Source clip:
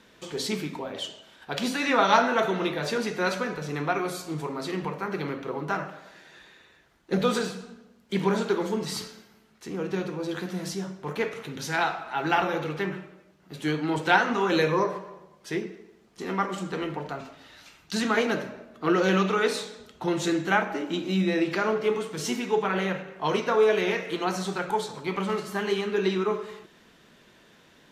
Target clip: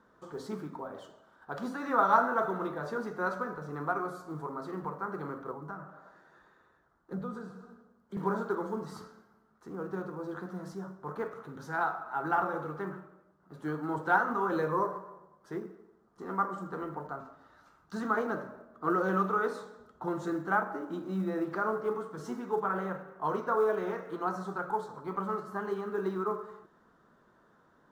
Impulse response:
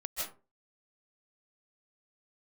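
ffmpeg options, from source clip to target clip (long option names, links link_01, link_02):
-filter_complex "[0:a]acrusher=bits=6:mode=log:mix=0:aa=0.000001,asettb=1/sr,asplit=3[link_01][link_02][link_03];[link_01]atrim=end=5.524[link_04];[link_02]atrim=start=5.52:end=8.17,asetpts=PTS-STARTPTS,afade=type=in:duration=0.004:curve=qsin,afade=type=out:start_time=2.646:duration=0.004:curve=qsin,acrossover=split=230[link_05][link_06];[link_06]acompressor=threshold=-39dB:ratio=3[link_07];[link_05][link_07]amix=inputs=2:normalize=0[link_08];[link_03]atrim=start=8.166[link_09];[link_04][link_08]acrossfade=duration=0.004:curve1=hsin:curve2=qsin[link_10];[link_10][link_09]acrossfade=duration=0.004:curve1=qsin:curve2=hsin,highshelf=frequency=1800:width_type=q:width=3:gain=-11.5,volume=-8dB"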